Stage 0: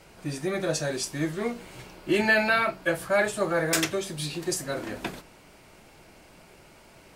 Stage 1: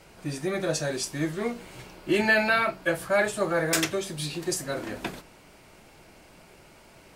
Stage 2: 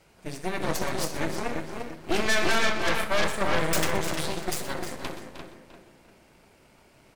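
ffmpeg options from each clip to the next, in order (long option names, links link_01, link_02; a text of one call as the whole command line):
ffmpeg -i in.wav -af anull out.wav
ffmpeg -i in.wav -filter_complex "[0:a]asplit=2[link_01][link_02];[link_02]adelay=346,lowpass=frequency=2700:poles=1,volume=-4dB,asplit=2[link_03][link_04];[link_04]adelay=346,lowpass=frequency=2700:poles=1,volume=0.43,asplit=2[link_05][link_06];[link_06]adelay=346,lowpass=frequency=2700:poles=1,volume=0.43,asplit=2[link_07][link_08];[link_08]adelay=346,lowpass=frequency=2700:poles=1,volume=0.43,asplit=2[link_09][link_10];[link_10]adelay=346,lowpass=frequency=2700:poles=1,volume=0.43[link_11];[link_03][link_05][link_07][link_09][link_11]amix=inputs=5:normalize=0[link_12];[link_01][link_12]amix=inputs=2:normalize=0,aeval=exprs='0.355*(cos(1*acos(clip(val(0)/0.355,-1,1)))-cos(1*PI/2))+0.1*(cos(5*acos(clip(val(0)/0.355,-1,1)))-cos(5*PI/2))+0.0631*(cos(7*acos(clip(val(0)/0.355,-1,1)))-cos(7*PI/2))+0.141*(cos(8*acos(clip(val(0)/0.355,-1,1)))-cos(8*PI/2))':channel_layout=same,asplit=2[link_13][link_14];[link_14]aecho=0:1:62|123|309:0.211|0.2|0.266[link_15];[link_13][link_15]amix=inputs=2:normalize=0,volume=-8.5dB" out.wav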